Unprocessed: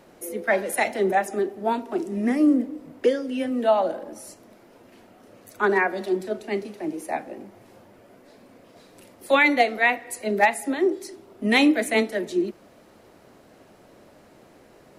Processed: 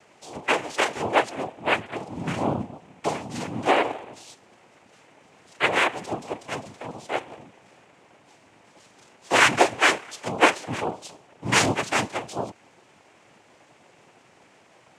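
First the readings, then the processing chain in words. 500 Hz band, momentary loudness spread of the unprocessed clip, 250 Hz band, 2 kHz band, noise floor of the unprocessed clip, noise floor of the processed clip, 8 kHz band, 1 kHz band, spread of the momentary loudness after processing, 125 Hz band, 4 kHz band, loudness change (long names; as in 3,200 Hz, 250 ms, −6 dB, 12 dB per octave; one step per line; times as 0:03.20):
−4.0 dB, 13 LU, −7.5 dB, +0.5 dB, −53 dBFS, −57 dBFS, +5.5 dB, +1.0 dB, 17 LU, +7.0 dB, +5.0 dB, −1.0 dB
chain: low shelf with overshoot 620 Hz −6.5 dB, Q 1.5
cochlear-implant simulation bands 4
level +1 dB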